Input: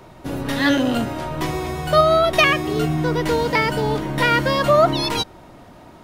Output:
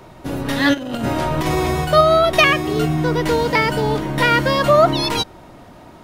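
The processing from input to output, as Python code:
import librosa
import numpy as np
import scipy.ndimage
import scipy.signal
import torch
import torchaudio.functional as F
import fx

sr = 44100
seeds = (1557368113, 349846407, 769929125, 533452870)

y = fx.over_compress(x, sr, threshold_db=-24.0, ratio=-0.5, at=(0.73, 1.84), fade=0.02)
y = F.gain(torch.from_numpy(y), 2.0).numpy()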